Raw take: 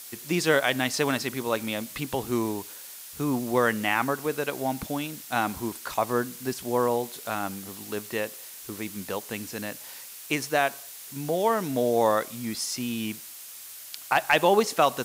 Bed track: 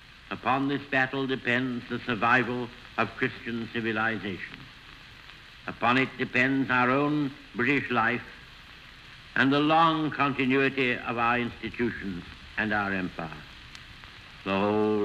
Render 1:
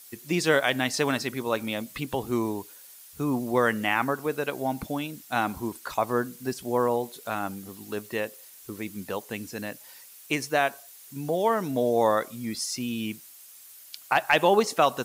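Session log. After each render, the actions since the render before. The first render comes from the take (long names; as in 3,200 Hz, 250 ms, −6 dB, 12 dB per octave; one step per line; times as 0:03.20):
broadband denoise 9 dB, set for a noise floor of −43 dBFS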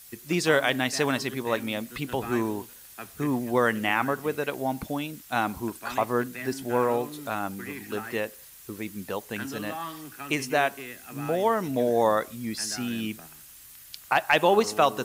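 mix in bed track −14.5 dB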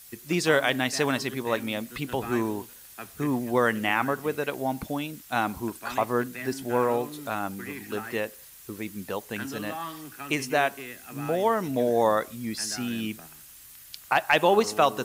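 no processing that can be heard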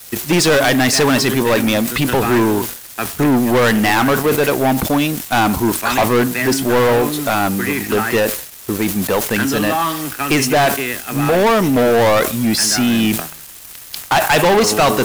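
leveller curve on the samples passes 5
level that may fall only so fast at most 91 dB per second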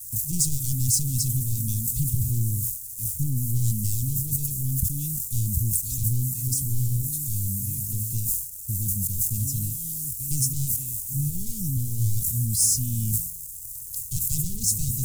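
Chebyshev band-stop filter 120–7,400 Hz, order 3
low-shelf EQ 170 Hz +3 dB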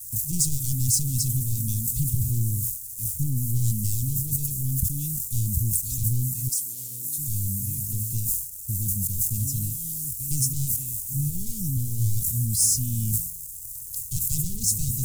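0:06.48–0:07.17: high-pass filter 660 Hz → 310 Hz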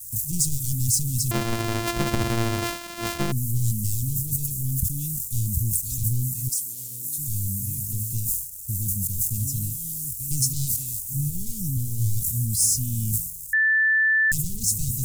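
0:01.31–0:03.32: samples sorted by size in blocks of 128 samples
0:10.42–0:10.99: parametric band 4,300 Hz +8 dB 0.89 octaves
0:13.53–0:14.32: beep over 1,760 Hz −16.5 dBFS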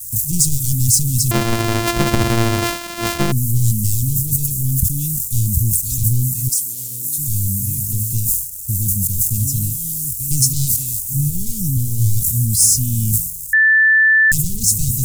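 level +8 dB
brickwall limiter −1 dBFS, peak gain reduction 2 dB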